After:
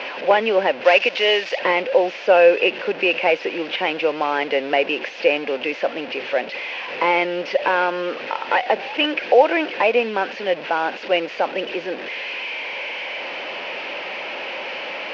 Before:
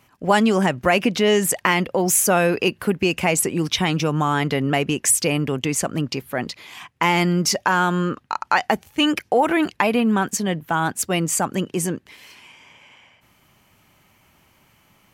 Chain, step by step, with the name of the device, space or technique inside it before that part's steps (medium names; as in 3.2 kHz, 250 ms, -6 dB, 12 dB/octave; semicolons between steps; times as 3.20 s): digital answering machine (band-pass 300–3300 Hz; one-bit delta coder 32 kbps, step -26 dBFS; cabinet simulation 380–4000 Hz, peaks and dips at 530 Hz +10 dB, 1.2 kHz -8 dB, 2.6 kHz +7 dB, 3.8 kHz -6 dB); 0.84–1.59 s: RIAA curve recording; trim +2 dB